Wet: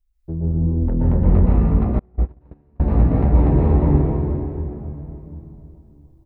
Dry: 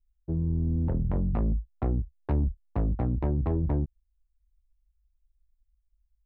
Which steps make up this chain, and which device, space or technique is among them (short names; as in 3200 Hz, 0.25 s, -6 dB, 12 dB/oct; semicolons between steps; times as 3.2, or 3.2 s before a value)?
cave (echo 0.315 s -18 dB; reverb RT60 3.2 s, pre-delay 0.115 s, DRR -8.5 dB); 1.99–2.8 gate -12 dBFS, range -36 dB; gain +2.5 dB